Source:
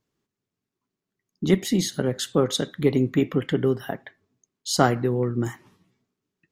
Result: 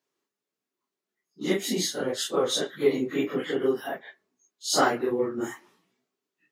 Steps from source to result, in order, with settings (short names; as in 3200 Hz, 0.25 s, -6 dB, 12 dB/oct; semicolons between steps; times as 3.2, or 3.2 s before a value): phase scrambler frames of 0.1 s; HPF 360 Hz 12 dB/oct